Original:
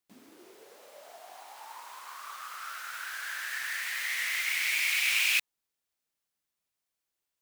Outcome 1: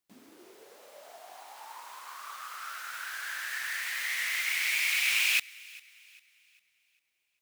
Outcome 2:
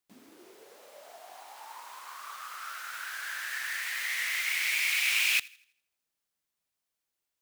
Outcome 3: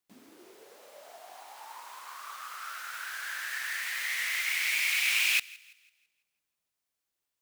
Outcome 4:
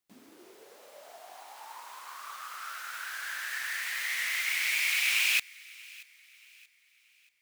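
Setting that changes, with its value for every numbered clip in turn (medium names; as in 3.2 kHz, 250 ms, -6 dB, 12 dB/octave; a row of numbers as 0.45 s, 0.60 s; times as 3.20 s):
feedback echo behind a high-pass, time: 399 ms, 82 ms, 166 ms, 631 ms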